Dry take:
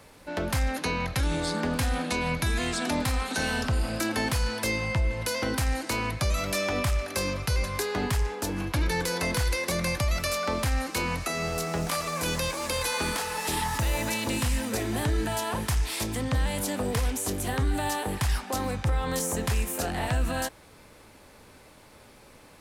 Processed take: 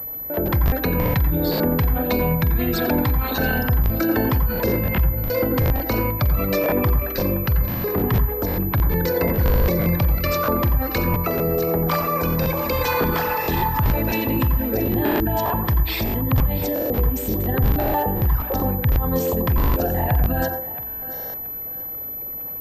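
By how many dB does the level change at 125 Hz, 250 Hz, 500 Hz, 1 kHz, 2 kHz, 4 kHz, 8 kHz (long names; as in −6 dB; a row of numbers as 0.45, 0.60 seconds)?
+9.0, +9.0, +8.5, +6.5, +2.0, −2.0, −10.0 decibels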